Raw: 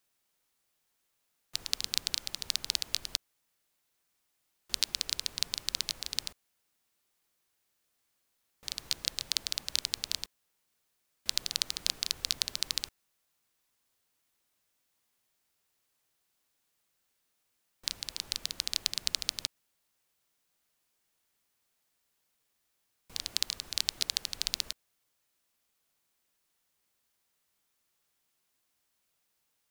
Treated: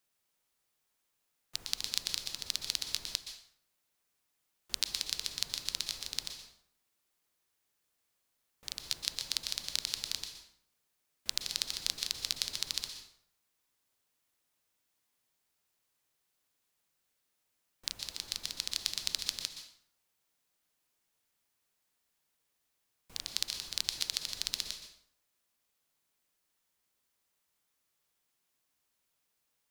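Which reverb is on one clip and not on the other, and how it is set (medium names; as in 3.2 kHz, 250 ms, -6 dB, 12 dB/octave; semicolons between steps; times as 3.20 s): plate-style reverb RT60 0.63 s, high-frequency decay 0.75×, pre-delay 110 ms, DRR 7 dB; trim -3 dB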